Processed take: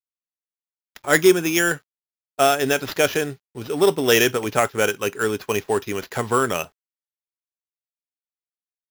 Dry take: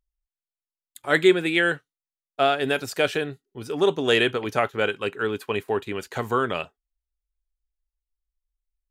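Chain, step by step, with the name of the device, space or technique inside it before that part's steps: early companding sampler (sample-rate reducer 8800 Hz, jitter 0%; companded quantiser 6-bit); 1.2–1.71 thirty-one-band EQ 500 Hz -6 dB, 2000 Hz -8 dB, 4000 Hz -6 dB; gain +3.5 dB

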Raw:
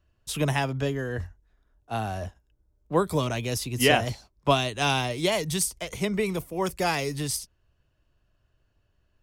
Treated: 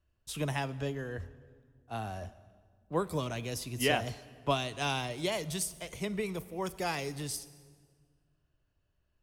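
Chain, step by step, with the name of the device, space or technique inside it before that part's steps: saturated reverb return (on a send at -13.5 dB: reverb RT60 1.7 s, pre-delay 10 ms + soft clip -24.5 dBFS, distortion -10 dB); on the sum: gain -8 dB

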